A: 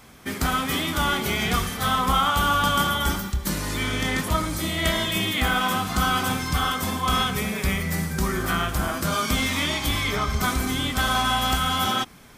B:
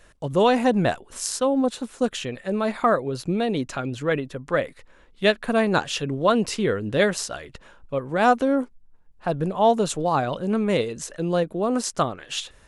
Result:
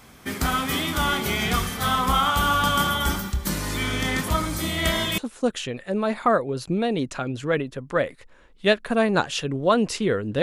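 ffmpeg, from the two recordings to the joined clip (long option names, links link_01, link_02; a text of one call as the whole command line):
ffmpeg -i cue0.wav -i cue1.wav -filter_complex "[0:a]apad=whole_dur=10.42,atrim=end=10.42,atrim=end=5.182[link_01];[1:a]atrim=start=1.758:end=7[link_02];[link_01][link_02]acrossfade=duration=0.004:curve1=hsin:curve2=hsin" out.wav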